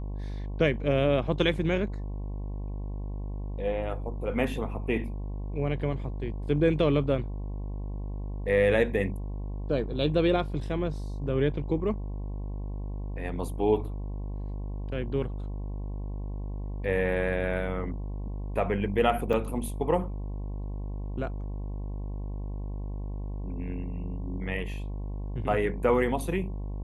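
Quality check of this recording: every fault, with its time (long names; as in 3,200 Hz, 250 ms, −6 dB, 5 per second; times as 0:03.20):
mains buzz 50 Hz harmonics 22 −34 dBFS
0:19.33–0:19.34: drop-out 5.7 ms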